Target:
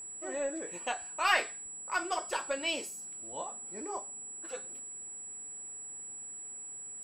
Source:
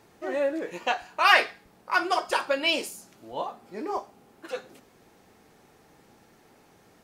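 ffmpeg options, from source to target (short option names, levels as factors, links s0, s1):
-af "aeval=exprs='0.473*(cos(1*acos(clip(val(0)/0.473,-1,1)))-cos(1*PI/2))+0.00531*(cos(6*acos(clip(val(0)/0.473,-1,1)))-cos(6*PI/2))':c=same,aeval=exprs='val(0)+0.0224*sin(2*PI*7800*n/s)':c=same,volume=0.376"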